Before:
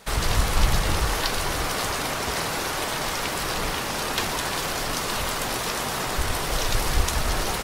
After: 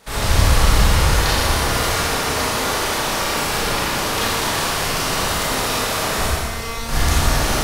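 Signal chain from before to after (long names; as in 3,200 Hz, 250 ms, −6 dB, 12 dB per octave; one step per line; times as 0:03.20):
dynamic equaliser 100 Hz, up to +5 dB, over −37 dBFS, Q 1
0:06.27–0:06.89: tuned comb filter 230 Hz, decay 0.23 s, harmonics all, mix 90%
four-comb reverb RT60 1.8 s, combs from 27 ms, DRR −8.5 dB
level −2.5 dB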